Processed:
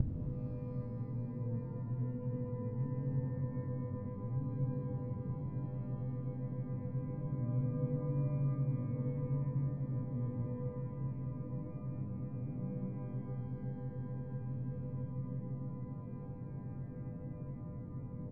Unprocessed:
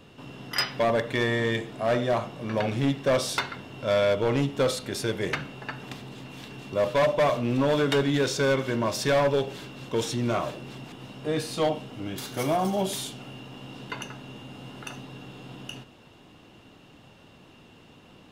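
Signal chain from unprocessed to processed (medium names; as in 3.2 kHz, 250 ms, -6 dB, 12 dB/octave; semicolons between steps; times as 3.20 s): spectral levelling over time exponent 0.4; in parallel at +3 dB: peak limiter -19 dBFS, peak gain reduction 11.5 dB; on the sum: inverse Chebyshev low-pass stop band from 1 kHz, stop band 80 dB; feedback delay 256 ms, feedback 59%, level -7 dB; inverted gate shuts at -32 dBFS, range -30 dB; pitch-shifted reverb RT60 2.3 s, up +12 st, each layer -8 dB, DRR 0.5 dB; trim +14 dB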